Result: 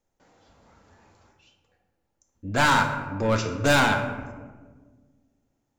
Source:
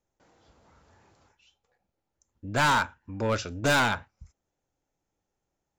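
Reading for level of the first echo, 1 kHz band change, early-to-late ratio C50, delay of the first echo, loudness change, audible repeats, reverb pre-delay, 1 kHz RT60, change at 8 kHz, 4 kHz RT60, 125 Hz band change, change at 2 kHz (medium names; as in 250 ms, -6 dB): no echo, +3.5 dB, 6.5 dB, no echo, +3.5 dB, no echo, 3 ms, 1.3 s, +3.0 dB, 0.70 s, +4.5 dB, +3.5 dB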